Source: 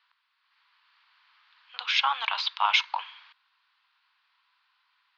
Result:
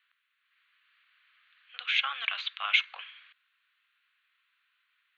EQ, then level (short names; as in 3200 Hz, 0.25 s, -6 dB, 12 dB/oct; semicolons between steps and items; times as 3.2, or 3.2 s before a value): HPF 410 Hz 12 dB/oct; fixed phaser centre 2200 Hz, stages 4; 0.0 dB